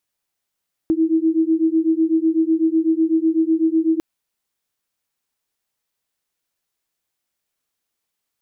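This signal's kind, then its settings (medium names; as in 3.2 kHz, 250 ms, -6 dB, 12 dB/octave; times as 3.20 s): beating tones 319 Hz, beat 8 Hz, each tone -17.5 dBFS 3.10 s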